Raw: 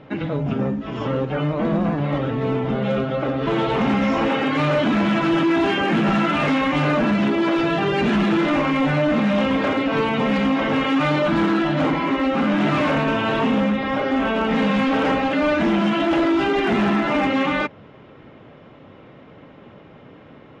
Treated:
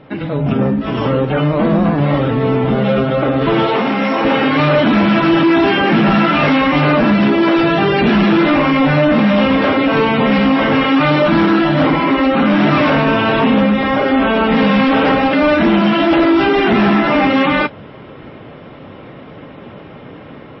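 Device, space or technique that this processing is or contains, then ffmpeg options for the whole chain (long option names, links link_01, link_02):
low-bitrate web radio: -filter_complex "[0:a]asplit=3[link_01][link_02][link_03];[link_01]afade=type=out:start_time=3.66:duration=0.02[link_04];[link_02]highpass=250,afade=type=in:start_time=3.66:duration=0.02,afade=type=out:start_time=4.23:duration=0.02[link_05];[link_03]afade=type=in:start_time=4.23:duration=0.02[link_06];[link_04][link_05][link_06]amix=inputs=3:normalize=0,dynaudnorm=framelen=290:gausssize=3:maxgain=7.5dB,alimiter=limit=-9.5dB:level=0:latency=1:release=72,volume=3dB" -ar 16000 -c:a libmp3lame -b:a 24k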